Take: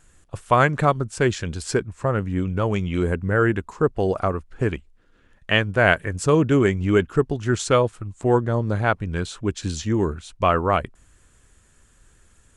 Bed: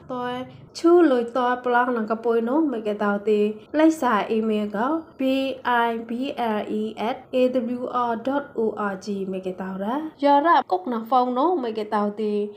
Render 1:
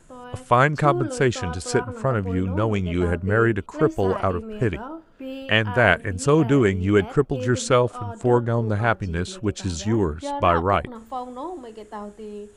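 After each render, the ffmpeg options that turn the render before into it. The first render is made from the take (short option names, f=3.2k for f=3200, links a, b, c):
-filter_complex "[1:a]volume=-12dB[a];[0:a][a]amix=inputs=2:normalize=0"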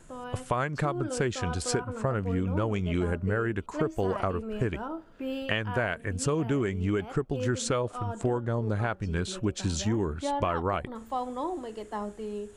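-af "alimiter=limit=-11dB:level=0:latency=1:release=493,acompressor=threshold=-24dB:ratio=6"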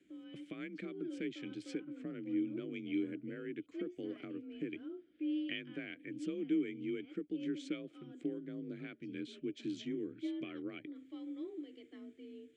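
-filter_complex "[0:a]asplit=3[a][b][c];[a]bandpass=f=270:t=q:w=8,volume=0dB[d];[b]bandpass=f=2.29k:t=q:w=8,volume=-6dB[e];[c]bandpass=f=3.01k:t=q:w=8,volume=-9dB[f];[d][e][f]amix=inputs=3:normalize=0,afreqshift=38"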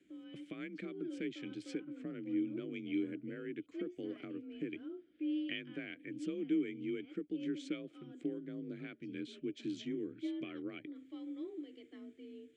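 -af anull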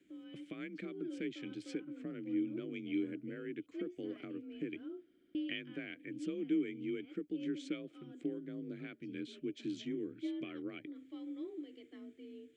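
-filter_complex "[0:a]asplit=5[a][b][c][d][e];[a]atrim=end=5.142[f];[b]atrim=start=5.068:end=5.142[g];[c]atrim=start=5.068:end=5.142[h];[d]atrim=start=5.068:end=5.142[i];[e]atrim=start=5.348[j];[f][g]acrossfade=d=0.004:c1=hsin:c2=hsin[k];[k][h]acrossfade=d=0.004:c1=hsin:c2=hsin[l];[l][i]acrossfade=d=0.004:c1=hsin:c2=hsin[m];[m][j]acrossfade=d=0.004:c1=hsin:c2=hsin"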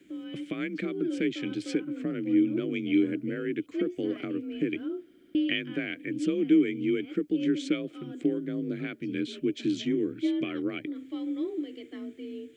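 -af "volume=12dB"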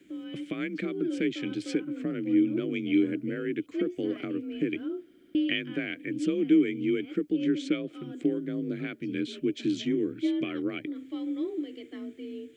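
-filter_complex "[0:a]asettb=1/sr,asplit=3[a][b][c];[a]atrim=end=7.314[d];[b]atrim=start=7.31:end=7.91,asetpts=PTS-STARTPTS,afade=t=in:d=0.004:c=qsin,afade=t=out:st=0.596:d=0.004:c=qsin,highshelf=f=6.8k:g=-6[e];[c]atrim=start=7.906[f];[d][e]acrossfade=d=0.004:c1=hsin:c2=qsin[g];[g][f]acrossfade=d=0.004:c1=qsin:c2=hsin"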